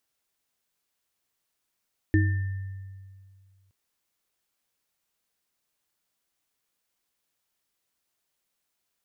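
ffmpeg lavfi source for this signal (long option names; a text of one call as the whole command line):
ffmpeg -f lavfi -i "aevalsrc='0.126*pow(10,-3*t/2.11)*sin(2*PI*96.3*t)+0.126*pow(10,-3*t/0.41)*sin(2*PI*315*t)+0.0376*pow(10,-3*t/1.25)*sin(2*PI*1790*t)':duration=1.57:sample_rate=44100" out.wav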